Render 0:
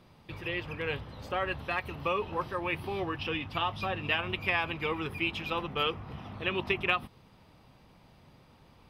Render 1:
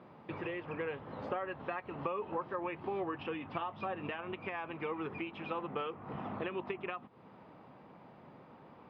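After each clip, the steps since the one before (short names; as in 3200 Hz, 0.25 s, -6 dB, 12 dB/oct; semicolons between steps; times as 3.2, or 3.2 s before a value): HPF 210 Hz 12 dB/oct; compressor 6:1, threshold -40 dBFS, peak gain reduction 16.5 dB; LPF 1500 Hz 12 dB/oct; gain +6.5 dB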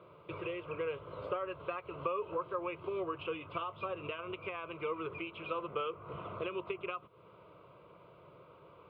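fixed phaser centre 1200 Hz, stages 8; gain +2.5 dB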